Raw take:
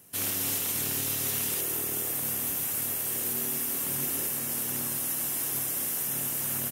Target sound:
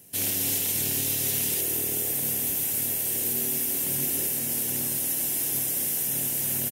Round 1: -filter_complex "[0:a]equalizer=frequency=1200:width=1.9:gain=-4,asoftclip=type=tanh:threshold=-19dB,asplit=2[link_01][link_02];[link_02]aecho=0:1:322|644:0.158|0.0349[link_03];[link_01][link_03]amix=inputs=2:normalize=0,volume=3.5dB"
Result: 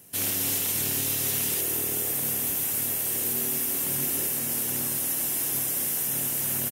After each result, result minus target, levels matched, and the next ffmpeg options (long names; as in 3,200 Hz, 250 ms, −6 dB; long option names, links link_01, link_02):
soft clipping: distortion +13 dB; 1,000 Hz band +3.5 dB
-filter_complex "[0:a]equalizer=frequency=1200:width=1.9:gain=-4,asoftclip=type=tanh:threshold=-12dB,asplit=2[link_01][link_02];[link_02]aecho=0:1:322|644:0.158|0.0349[link_03];[link_01][link_03]amix=inputs=2:normalize=0,volume=3.5dB"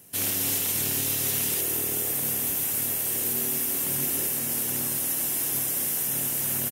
1,000 Hz band +3.5 dB
-filter_complex "[0:a]equalizer=frequency=1200:width=1.9:gain=-12,asoftclip=type=tanh:threshold=-12dB,asplit=2[link_01][link_02];[link_02]aecho=0:1:322|644:0.158|0.0349[link_03];[link_01][link_03]amix=inputs=2:normalize=0,volume=3.5dB"